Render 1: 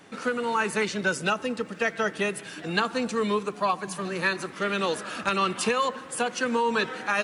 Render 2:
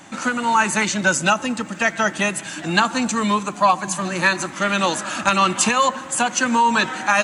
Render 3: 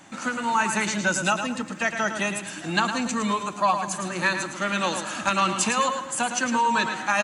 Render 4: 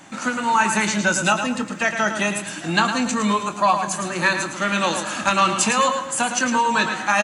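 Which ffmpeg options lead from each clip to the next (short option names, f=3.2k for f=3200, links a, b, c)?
-af "superequalizer=7b=0.282:9b=1.41:15b=2.51,volume=8dB"
-af "aecho=1:1:109|218|327:0.398|0.115|0.0335,volume=-6dB"
-filter_complex "[0:a]asplit=2[a][b];[b]adelay=24,volume=-10.5dB[c];[a][c]amix=inputs=2:normalize=0,volume=4dB"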